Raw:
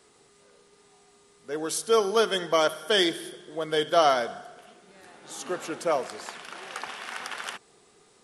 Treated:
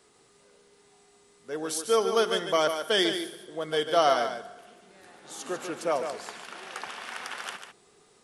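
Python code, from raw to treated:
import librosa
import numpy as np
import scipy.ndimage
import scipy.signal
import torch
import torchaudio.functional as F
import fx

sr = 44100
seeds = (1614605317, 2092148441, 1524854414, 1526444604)

y = x + 10.0 ** (-8.0 / 20.0) * np.pad(x, (int(146 * sr / 1000.0), 0))[:len(x)]
y = y * librosa.db_to_amplitude(-2.0)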